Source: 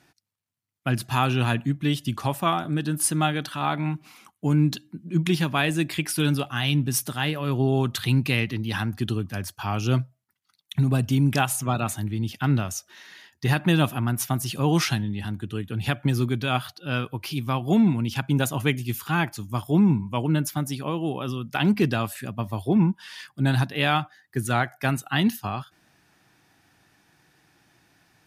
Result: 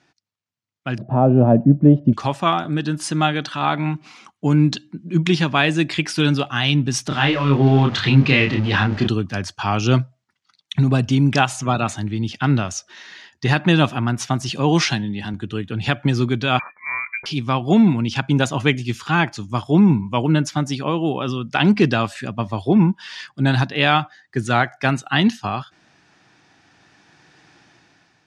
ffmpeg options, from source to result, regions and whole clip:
ffmpeg -i in.wav -filter_complex "[0:a]asettb=1/sr,asplit=3[link_01][link_02][link_03];[link_01]atrim=end=0.984[link_04];[link_02]atrim=start=0.98:end=2.13,asetpts=PTS-STARTPTS,afade=type=in:duration=0.004:curve=qsin,afade=type=out:start_time=1.146:duration=0.004:curve=qsin,lowpass=frequency=600:width_type=q:width=5.7,equalizer=frequency=190:width=0.88:gain=11[link_05];[link_03]atrim=start=2.126[link_06];[link_04][link_05]acrossfade=duration=0.004:curve1=hsin:curve2=qsin[link_07];[link_07][link_06]acrossfade=duration=0.004:curve1=qsin:curve2=hsin,asettb=1/sr,asplit=3[link_08][link_09][link_10];[link_08]atrim=end=7.084[link_11];[link_09]atrim=start=7.08:end=9.08,asetpts=PTS-STARTPTS,afade=type=in:duration=0.004:curve=qsin,afade=type=out:start_time=1.996:duration=0.004:curve=qsin,aeval=exprs='val(0)+0.5*0.0224*sgn(val(0))':channel_layout=same,lowpass=3700,asplit=2[link_12][link_13];[link_13]adelay=29,volume=-3.5dB[link_14];[link_12][link_14]amix=inputs=2:normalize=0,atrim=end_sample=88200[link_15];[link_10]atrim=start=9.076[link_16];[link_11][link_15]acrossfade=duration=0.004:curve1=hsin:curve2=qsin[link_17];[link_17][link_16]acrossfade=duration=0.004:curve1=qsin:curve2=hsin,asettb=1/sr,asplit=3[link_18][link_19][link_20];[link_18]atrim=end=14.494[link_21];[link_19]atrim=start=14.49:end=15.34,asetpts=PTS-STARTPTS,afade=type=in:duration=0.004:curve=qsin,afade=type=out:start_time=0.846:duration=0.004:curve=qsin,highpass=110,bandreject=frequency=1300:width=8.4[link_22];[link_20]atrim=start=15.336[link_23];[link_21][link_22]acrossfade=duration=0.004:curve1=hsin:curve2=qsin[link_24];[link_24][link_23]acrossfade=duration=0.004:curve1=qsin:curve2=hsin,asettb=1/sr,asplit=3[link_25][link_26][link_27];[link_25]atrim=end=16.594[link_28];[link_26]atrim=start=16.59:end=17.26,asetpts=PTS-STARTPTS,afade=type=in:duration=0.004:curve=qsin,afade=type=out:start_time=0.666:duration=0.004:curve=qsin,acompressor=threshold=-30dB:ratio=2:attack=3.2:release=140:knee=1:detection=peak,lowpass=frequency=2100:width_type=q:width=0.5098,lowpass=frequency=2100:width_type=q:width=0.6013,lowpass=frequency=2100:width_type=q:width=0.9,lowpass=frequency=2100:width_type=q:width=2.563,afreqshift=-2500[link_29];[link_27]atrim=start=17.256[link_30];[link_28][link_29]acrossfade=duration=0.004:curve1=hsin:curve2=qsin[link_31];[link_31][link_30]acrossfade=duration=0.004:curve1=qsin:curve2=hsin,lowpass=frequency=6800:width=0.5412,lowpass=frequency=6800:width=1.3066,lowshelf=frequency=82:gain=-10,dynaudnorm=framelen=860:gausssize=3:maxgain=11.5dB" out.wav

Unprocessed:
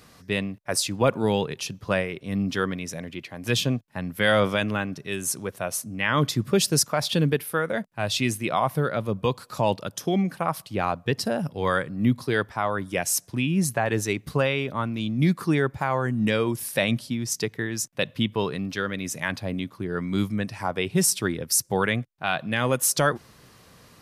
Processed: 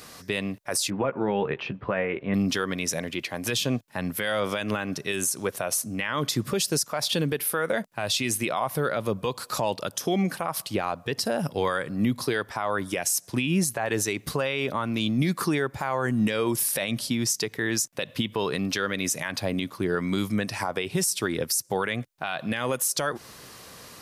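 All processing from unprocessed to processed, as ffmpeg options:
ffmpeg -i in.wav -filter_complex "[0:a]asettb=1/sr,asplit=3[link_01][link_02][link_03];[link_01]atrim=end=0.904[link_04];[link_02]atrim=start=0.9:end=2.34,asetpts=PTS-STARTPTS,afade=type=in:duration=0.004:curve=qsin,afade=type=out:start_time=1.436:duration=0.004:curve=qsin,lowpass=frequency=2300:width=0.5412,lowpass=frequency=2300:width=1.3066,asplit=2[link_05][link_06];[link_06]adelay=15,volume=-7.5dB[link_07];[link_05][link_07]amix=inputs=2:normalize=0,atrim=end_sample=63504[link_08];[link_03]atrim=start=2.336[link_09];[link_04][link_08]acrossfade=duration=0.004:curve1=hsin:curve2=qsin[link_10];[link_10][link_09]acrossfade=duration=0.004:curve1=qsin:curve2=hsin,bass=frequency=250:gain=-7,treble=frequency=4000:gain=4,acompressor=threshold=-25dB:ratio=6,alimiter=limit=-22dB:level=0:latency=1:release=89,volume=7dB" out.wav

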